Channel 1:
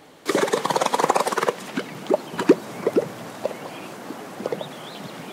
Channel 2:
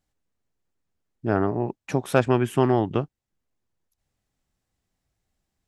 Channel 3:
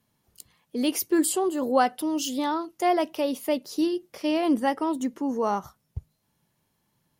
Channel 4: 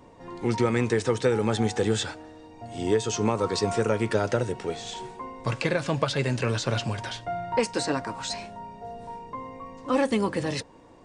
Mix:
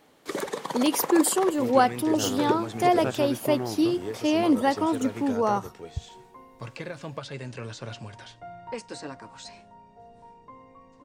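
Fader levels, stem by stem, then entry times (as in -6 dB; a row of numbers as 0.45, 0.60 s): -10.5, -11.0, +1.5, -11.0 dB; 0.00, 0.90, 0.00, 1.15 s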